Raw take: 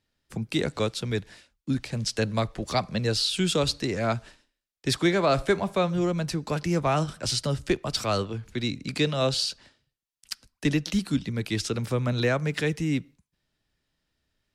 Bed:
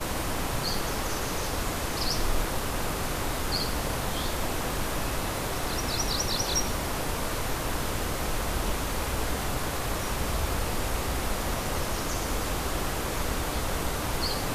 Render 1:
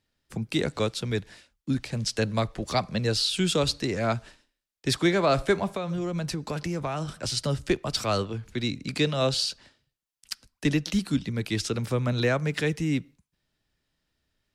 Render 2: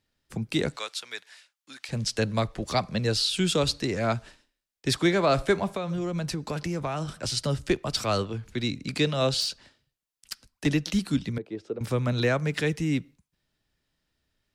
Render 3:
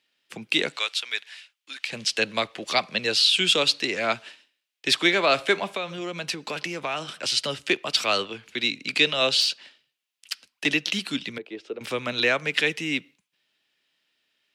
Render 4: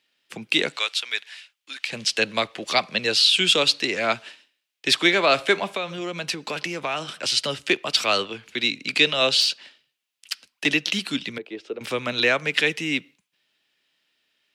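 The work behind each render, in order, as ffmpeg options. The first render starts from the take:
-filter_complex "[0:a]asettb=1/sr,asplit=3[a][b][c];[a]atrim=end=5.764[d];[b]atrim=start=5.76:end=7.37,asetpts=PTS-STARTPTS,afade=t=in:d=0.004:c=qsin,afade=t=out:st=1.606:d=0.004:c=qsin,acompressor=threshold=-25dB:ratio=12:attack=3.2:release=140:knee=1:detection=peak[e];[c]atrim=start=7.366[f];[d][e]acrossfade=d=0.004:c1=hsin:c2=qsin[g];[g][f]acrossfade=d=0.004:c1=qsin:c2=hsin"
-filter_complex "[0:a]asettb=1/sr,asplit=3[a][b][c];[a]atrim=end=0.764[d];[b]atrim=start=0.76:end=1.89,asetpts=PTS-STARTPTS,afade=t=in:d=0.004:c=qsin,afade=t=out:st=1.126:d=0.004:c=qsin,highpass=1.1k[e];[c]atrim=start=1.886[f];[d][e]acrossfade=d=0.004:c1=hsin:c2=qsin[g];[g][f]acrossfade=d=0.004:c1=qsin:c2=hsin,asettb=1/sr,asplit=3[h][i][j];[h]atrim=end=9.404[k];[i]atrim=start=9.4:end=10.66,asetpts=PTS-STARTPTS,afade=t=in:d=0.004:c=qsin,afade=t=out:st=1.256:d=0.004:c=qsin,asoftclip=type=hard:threshold=-22dB[l];[j]atrim=start=10.656[m];[k][l]acrossfade=d=0.004:c1=hsin:c2=qsin[n];[n][m]acrossfade=d=0.004:c1=qsin:c2=hsin,asettb=1/sr,asplit=3[o][p][q];[o]atrim=end=11.384[r];[p]atrim=start=11.38:end=11.81,asetpts=PTS-STARTPTS,afade=t=in:d=0.004:c=qsin,afade=t=out:st=0.426:d=0.004:c=qsin,bandpass=f=450:t=q:w=1.9[s];[q]atrim=start=11.806[t];[r][s]acrossfade=d=0.004:c1=hsin:c2=qsin[u];[u][t]acrossfade=d=0.004:c1=qsin:c2=hsin"
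-af "highpass=300,equalizer=f=2.8k:w=1.1:g=13"
-af "volume=2dB"

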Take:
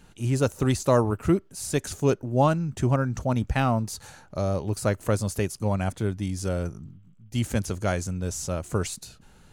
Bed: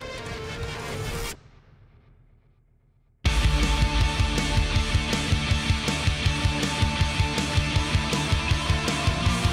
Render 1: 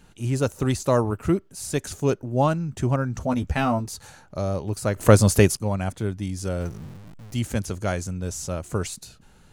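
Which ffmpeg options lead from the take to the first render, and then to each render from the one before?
-filter_complex "[0:a]asettb=1/sr,asplit=3[a][b][c];[a]atrim=end=3.204[d];[b]atrim=start=3.2:end=3.86,asetpts=PTS-STARTPTS,afade=t=in:d=0.004:c=qsin,afade=t=out:st=0.656:d=0.004:c=qsin,asplit=2[e][f];[f]adelay=12,volume=-4dB[g];[e][g]amix=inputs=2:normalize=0,atrim=end_sample=29106[h];[c]atrim=start=3.856[i];[d][h]acrossfade=d=0.004:c1=hsin:c2=qsin[j];[j][i]acrossfade=d=0.004:c1=qsin:c2=hsin,asettb=1/sr,asplit=3[k][l][m];[k]atrim=end=6.604[n];[l]atrim=start=6.6:end=7.35,asetpts=PTS-STARTPTS,afade=t=in:d=0.004:c=qsin,afade=t=out:st=0.746:d=0.004:c=qsin,aeval=exprs='val(0)+0.5*0.0106*sgn(val(0))':c=same[o];[m]atrim=start=7.346[p];[n][o]acrossfade=d=0.004:c1=hsin:c2=qsin[q];[q][p]acrossfade=d=0.004:c1=qsin:c2=hsin,asplit=3[r][s][t];[r]atrim=end=4.962[u];[s]atrim=start=4.958:end=5.572,asetpts=PTS-STARTPTS,volume=10.5dB[v];[t]atrim=start=5.568[w];[u][v]acrossfade=d=0.004:c1=hsin:c2=hsin[x];[x][w]acrossfade=d=0.004:c1=hsin:c2=hsin"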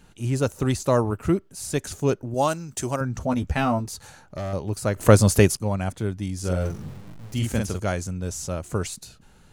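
-filter_complex "[0:a]asettb=1/sr,asplit=3[a][b][c];[a]atrim=end=2.344[d];[b]atrim=start=2.34:end=3.01,asetpts=PTS-STARTPTS,afade=t=in:d=0.004:c=qsin,afade=t=out:st=0.666:d=0.004:c=qsin,bass=f=250:g=-10,treble=f=4k:g=13[e];[c]atrim=start=3.006[f];[d][e]acrossfade=d=0.004:c1=hsin:c2=qsin[g];[g][f]acrossfade=d=0.004:c1=qsin:c2=hsin,asettb=1/sr,asplit=3[h][i][j];[h]atrim=end=3.914[k];[i]atrim=start=3.91:end=4.53,asetpts=PTS-STARTPTS,afade=t=in:d=0.004:c=qsin,afade=t=out:st=0.616:d=0.004:c=qsin,asoftclip=type=hard:threshold=-27dB[l];[j]atrim=start=4.526[m];[k][l]acrossfade=d=0.004:c1=hsin:c2=qsin[n];[n][m]acrossfade=d=0.004:c1=qsin:c2=hsin,asettb=1/sr,asplit=3[o][p][q];[o]atrim=end=6.394[r];[p]atrim=start=6.39:end=7.8,asetpts=PTS-STARTPTS,afade=t=in:d=0.004:c=qsin,afade=t=out:st=1.406:d=0.004:c=qsin,asplit=2[s][t];[t]adelay=44,volume=-3dB[u];[s][u]amix=inputs=2:normalize=0,atrim=end_sample=62181[v];[q]atrim=start=7.796[w];[r][v]acrossfade=d=0.004:c1=hsin:c2=qsin[x];[x][w]acrossfade=d=0.004:c1=qsin:c2=hsin"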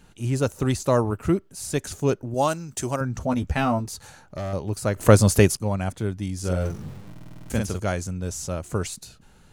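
-filter_complex "[0:a]asplit=9[a][b][c][d][e][f][g][h][i];[a]atrim=end=7.152[j];[b]atrim=start=7.098:end=7.152[k];[c]atrim=start=7.098:end=7.152[l];[d]atrim=start=7.098:end=7.152[m];[e]atrim=start=7.098:end=7.152[n];[f]atrim=start=7.098:end=7.152[o];[g]atrim=start=7.098:end=7.152[p];[h]atrim=start=7.098:end=7.152[q];[i]atrim=start=7.498[r];[j][k]acrossfade=d=0.004:c1=hsin:c2=hsin[s];[s][l]acrossfade=d=0.004:c1=hsin:c2=hsin[t];[t][m]acrossfade=d=0.004:c1=hsin:c2=hsin[u];[u][n]acrossfade=d=0.004:c1=hsin:c2=hsin[v];[v][o]acrossfade=d=0.004:c1=hsin:c2=hsin[w];[w][p]acrossfade=d=0.004:c1=hsin:c2=hsin[x];[x][q]acrossfade=d=0.004:c1=hsin:c2=hsin[y];[y][r]acrossfade=d=0.004:c1=hsin:c2=hsin"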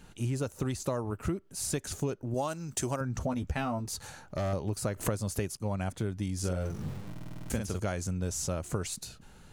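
-af "acompressor=threshold=-28dB:ratio=16"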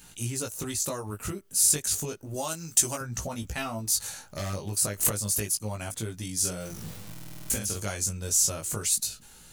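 -af "crystalizer=i=6:c=0,flanger=delay=17.5:depth=2.5:speed=0.31"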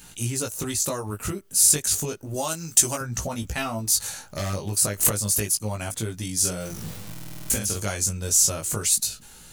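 -af "volume=4.5dB"

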